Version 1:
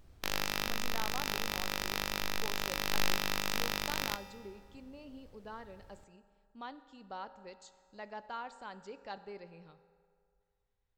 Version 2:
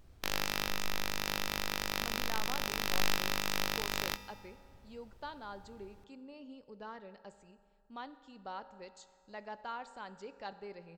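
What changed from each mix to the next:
speech: entry +1.35 s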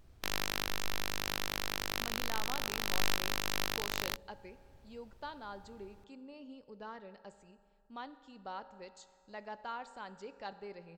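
background: send off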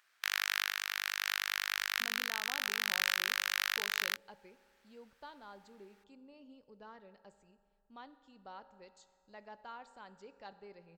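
speech -6.5 dB; background: add resonant high-pass 1.6 kHz, resonance Q 2.3

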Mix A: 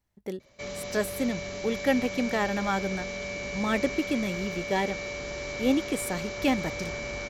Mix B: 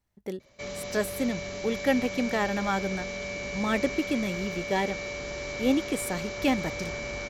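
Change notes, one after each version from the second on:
no change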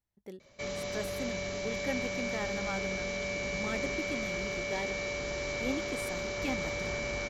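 speech -11.0 dB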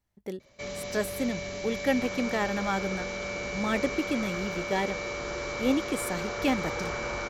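speech +9.5 dB; second sound +11.5 dB

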